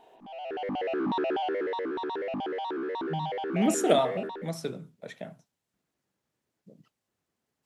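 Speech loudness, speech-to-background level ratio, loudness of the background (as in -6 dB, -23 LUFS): -29.5 LUFS, 3.0 dB, -32.5 LUFS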